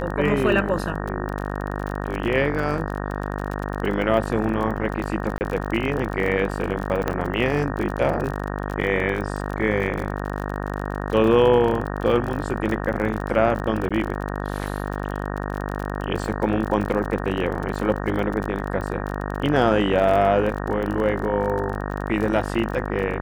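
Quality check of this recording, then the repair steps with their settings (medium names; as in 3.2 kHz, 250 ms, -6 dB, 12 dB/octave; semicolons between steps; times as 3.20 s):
buzz 50 Hz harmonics 37 -28 dBFS
crackle 38 per s -27 dBFS
5.38–5.41 s: dropout 29 ms
7.08 s: pop -10 dBFS
13.89–13.91 s: dropout 16 ms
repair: de-click; de-hum 50 Hz, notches 37; interpolate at 5.38 s, 29 ms; interpolate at 13.89 s, 16 ms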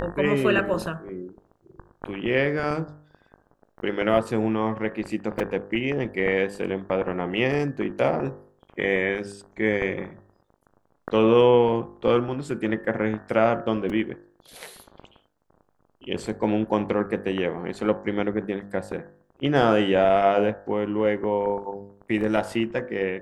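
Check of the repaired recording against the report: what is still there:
nothing left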